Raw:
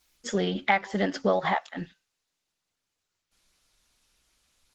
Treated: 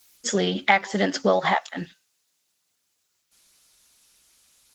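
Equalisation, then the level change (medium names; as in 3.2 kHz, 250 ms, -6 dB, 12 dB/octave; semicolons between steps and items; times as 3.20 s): high-pass 110 Hz 6 dB/octave; treble shelf 5.7 kHz +12 dB; +4.0 dB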